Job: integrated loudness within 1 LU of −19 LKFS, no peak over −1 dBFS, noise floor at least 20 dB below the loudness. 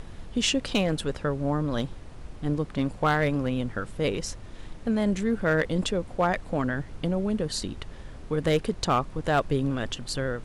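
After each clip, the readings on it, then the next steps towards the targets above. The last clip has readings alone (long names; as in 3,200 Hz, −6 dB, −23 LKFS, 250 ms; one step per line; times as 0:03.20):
share of clipped samples 0.3%; peaks flattened at −15.5 dBFS; background noise floor −43 dBFS; target noise floor −48 dBFS; integrated loudness −27.5 LKFS; sample peak −15.5 dBFS; target loudness −19.0 LKFS
→ clipped peaks rebuilt −15.5 dBFS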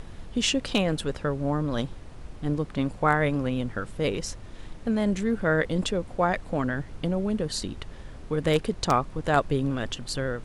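share of clipped samples 0.0%; background noise floor −43 dBFS; target noise floor −48 dBFS
→ noise reduction from a noise print 6 dB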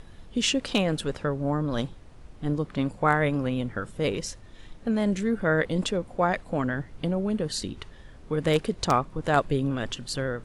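background noise floor −48 dBFS; integrated loudness −27.5 LKFS; sample peak −6.5 dBFS; target loudness −19.0 LKFS
→ level +8.5 dB
brickwall limiter −1 dBFS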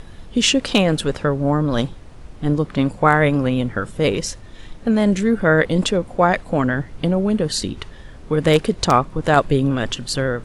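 integrated loudness −19.0 LKFS; sample peak −1.0 dBFS; background noise floor −40 dBFS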